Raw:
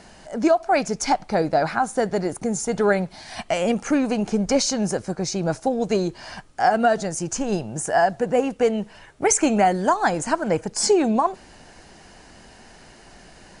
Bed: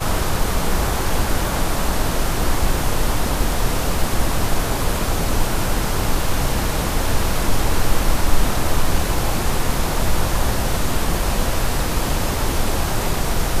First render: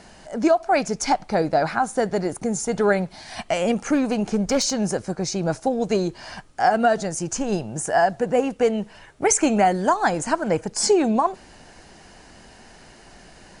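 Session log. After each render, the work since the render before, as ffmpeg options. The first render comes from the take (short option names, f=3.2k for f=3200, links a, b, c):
-filter_complex "[0:a]asettb=1/sr,asplit=3[a][b][c];[a]atrim=end=3.954[d];[b]atrim=start=3.95:end=4.73,asetpts=PTS-STARTPTS,afade=t=in:d=0.004:c=qsin,afade=t=out:st=0.776:d=0.004:c=qsin,asoftclip=type=hard:threshold=-14.5dB[e];[c]atrim=start=4.726[f];[d][e]acrossfade=d=0.004:c1=hsin:c2=qsin[g];[g][f]acrossfade=d=0.004:c1=qsin:c2=hsin"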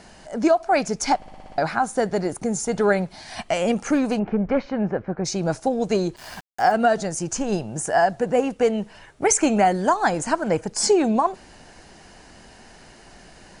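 -filter_complex "[0:a]asplit=3[a][b][c];[a]afade=t=out:st=4.18:d=0.02[d];[b]lowpass=f=2.3k:w=0.5412,lowpass=f=2.3k:w=1.3066,afade=t=in:st=4.18:d=0.02,afade=t=out:st=5.24:d=0.02[e];[c]afade=t=in:st=5.24:d=0.02[f];[d][e][f]amix=inputs=3:normalize=0,asettb=1/sr,asplit=3[g][h][i];[g]atrim=end=6.164[j];[h]atrim=start=6.16:end=6.72,asetpts=PTS-STARTPTS,afade=t=in:d=0.004:c=qsin,afade=t=out:st=0.556:d=0.004:c=qsin,aeval=exprs='val(0)*gte(abs(val(0)),0.0126)':c=same[k];[i]atrim=start=6.716[l];[j][k]acrossfade=d=0.004:c1=hsin:c2=qsin[m];[m][l]acrossfade=d=0.004:c1=qsin:c2=hsin,asplit=8[n][o][p][q][r][s][t][u];[n]atrim=end=1.222[v];[o]atrim=start=1.158:end=1.222[w];[p]atrim=start=1.158:end=1.222[x];[q]atrim=start=1.158:end=1.222[y];[r]atrim=start=1.158:end=1.222[z];[s]atrim=start=1.158:end=1.222[aa];[t]atrim=start=1.158:end=1.222[ab];[u]atrim=start=1.578[ac];[v][w]acrossfade=d=0.004:c1=hsin:c2=hsin[ad];[ad][x]acrossfade=d=0.004:c1=hsin:c2=hsin[ae];[ae][y]acrossfade=d=0.004:c1=hsin:c2=hsin[af];[af][z]acrossfade=d=0.004:c1=hsin:c2=hsin[ag];[ag][aa]acrossfade=d=0.004:c1=hsin:c2=hsin[ah];[ah][ab]acrossfade=d=0.004:c1=hsin:c2=hsin[ai];[ai][ac]acrossfade=d=0.004:c1=hsin:c2=hsin"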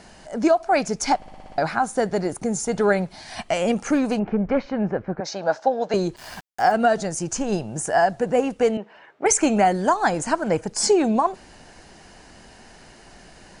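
-filter_complex "[0:a]asettb=1/sr,asplit=3[a][b][c];[a]atrim=end=5.204[d];[b]atrim=start=5.2:end=5.94,asetpts=PTS-STARTPTS,afade=t=in:d=0.004:c=qsin,afade=t=out:st=0.736:d=0.004:c=qsin,highpass=350,equalizer=f=360:t=q:w=4:g=-8,equalizer=f=600:t=q:w=4:g=7,equalizer=f=870:t=q:w=4:g=6,equalizer=f=1.6k:t=q:w=4:g=7,equalizer=f=2.4k:t=q:w=4:g=-5,lowpass=f=5.3k:w=0.5412,lowpass=f=5.3k:w=1.3066[e];[c]atrim=start=5.936[f];[d][e]acrossfade=d=0.004:c1=hsin:c2=qsin[g];[g][f]acrossfade=d=0.004:c1=qsin:c2=hsin,asettb=1/sr,asplit=3[h][i][j];[h]atrim=end=8.774[k];[i]atrim=start=8.77:end=9.26,asetpts=PTS-STARTPTS,afade=t=in:d=0.004:c=qsin,afade=t=out:st=0.486:d=0.004:c=qsin,highpass=330,lowpass=2.4k[l];[j]atrim=start=9.256[m];[k][l]acrossfade=d=0.004:c1=hsin:c2=qsin[n];[n][m]acrossfade=d=0.004:c1=qsin:c2=hsin"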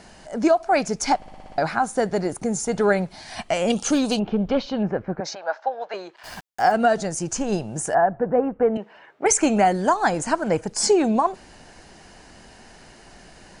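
-filter_complex "[0:a]asettb=1/sr,asplit=3[a][b][c];[a]atrim=end=3.704[d];[b]atrim=start=3.7:end=4.83,asetpts=PTS-STARTPTS,afade=t=in:d=0.004:c=qsin,afade=t=out:st=1.126:d=0.004:c=qsin,highshelf=f=2.6k:t=q:w=3:g=8[e];[c]atrim=start=4.826[f];[d][e]acrossfade=d=0.004:c1=hsin:c2=qsin[g];[g][f]acrossfade=d=0.004:c1=qsin:c2=hsin,asplit=3[h][i][j];[h]afade=t=out:st=5.34:d=0.02[k];[i]highpass=790,lowpass=2.8k,afade=t=in:st=5.34:d=0.02,afade=t=out:st=6.23:d=0.02[l];[j]afade=t=in:st=6.23:d=0.02[m];[k][l][m]amix=inputs=3:normalize=0,asettb=1/sr,asplit=3[n][o][p];[n]atrim=end=7.944[q];[o]atrim=start=7.94:end=8.76,asetpts=PTS-STARTPTS,afade=t=in:d=0.004:c=qsin,afade=t=out:st=0.816:d=0.004:c=qsin,lowpass=f=1.6k:w=0.5412,lowpass=f=1.6k:w=1.3066[r];[p]atrim=start=8.756[s];[q][r]acrossfade=d=0.004:c1=hsin:c2=qsin[t];[t][s]acrossfade=d=0.004:c1=qsin:c2=hsin"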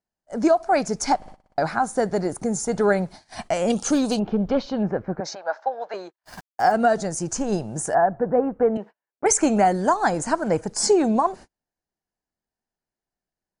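-af "agate=range=-43dB:threshold=-37dB:ratio=16:detection=peak,equalizer=f=2.8k:w=1.5:g=-6.5"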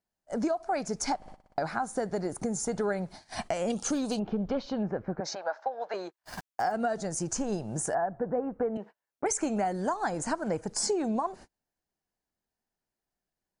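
-af "acompressor=threshold=-30dB:ratio=3"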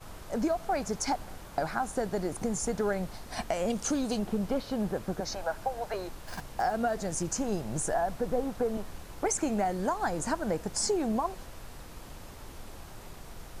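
-filter_complex "[1:a]volume=-25.5dB[a];[0:a][a]amix=inputs=2:normalize=0"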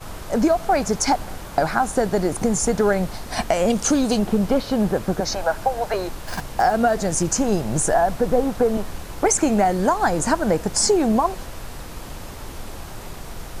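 -af "volume=11dB"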